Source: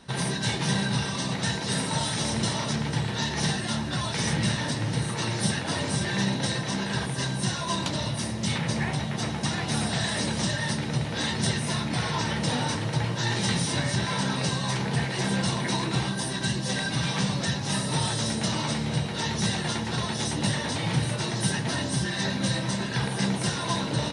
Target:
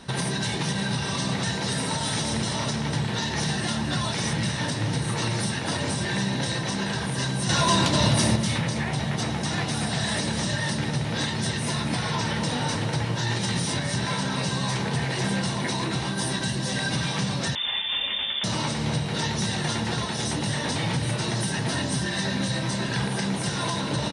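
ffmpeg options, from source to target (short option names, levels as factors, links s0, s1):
-filter_complex "[0:a]acontrast=62,alimiter=limit=0.133:level=0:latency=1:release=290,asettb=1/sr,asplit=3[s0][s1][s2];[s0]atrim=end=7.494[s3];[s1]atrim=start=7.49:end=8.36,asetpts=PTS-STARTPTS,afade=t=in:d=0.004:c=qsin,afade=t=out:st=0.866:d=0.004:c=qsin,acontrast=78[s4];[s2]atrim=start=8.356[s5];[s3][s4]acrossfade=d=0.004:c1=hsin:c2=qsin[s6];[s6][s5]acrossfade=d=0.004:c1=qsin:c2=hsin,aecho=1:1:257:0.299,asettb=1/sr,asplit=3[s7][s8][s9];[s7]atrim=end=17.554[s10];[s8]atrim=start=17.55:end=18.44,asetpts=PTS-STARTPTS,afade=t=in:d=0.004:c=qsin,afade=t=out:st=0.886:d=0.004:c=qsin,lowpass=f=3100:t=q:w=0.5098,lowpass=f=3100:t=q:w=0.6013,lowpass=f=3100:t=q:w=0.9,lowpass=f=3100:t=q:w=2.563,afreqshift=-3700[s11];[s9]atrim=start=18.436[s12];[s10][s11]acrossfade=d=0.004:c1=hsin:c2=qsin[s13];[s13][s12]acrossfade=d=0.004:c1=qsin:c2=hsin"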